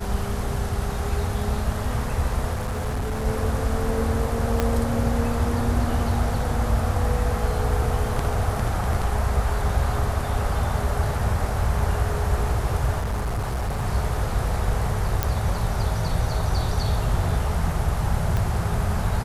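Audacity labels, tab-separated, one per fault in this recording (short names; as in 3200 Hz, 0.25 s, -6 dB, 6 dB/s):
2.550000	3.260000	clipped -22.5 dBFS
4.600000	4.600000	pop -8 dBFS
12.990000	13.830000	clipped -22 dBFS
15.230000	15.230000	pop -6 dBFS
18.370000	18.370000	pop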